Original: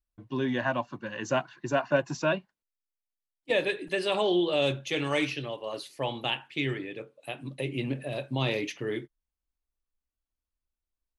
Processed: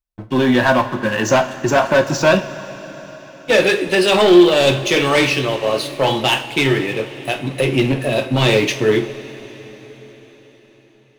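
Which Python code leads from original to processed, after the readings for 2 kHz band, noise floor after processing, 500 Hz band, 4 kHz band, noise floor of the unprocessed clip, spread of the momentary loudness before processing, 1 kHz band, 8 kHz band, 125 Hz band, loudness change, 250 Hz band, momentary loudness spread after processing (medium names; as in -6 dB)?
+14.5 dB, -50 dBFS, +14.5 dB, +14.5 dB, under -85 dBFS, 11 LU, +14.5 dB, +18.5 dB, +13.5 dB, +14.5 dB, +15.0 dB, 16 LU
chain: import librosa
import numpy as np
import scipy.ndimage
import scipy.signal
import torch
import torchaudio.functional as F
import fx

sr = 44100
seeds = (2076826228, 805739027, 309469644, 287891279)

y = fx.leveller(x, sr, passes=3)
y = fx.rev_double_slope(y, sr, seeds[0], early_s=0.33, late_s=5.0, knee_db=-18, drr_db=5.0)
y = F.gain(torch.from_numpy(y), 5.0).numpy()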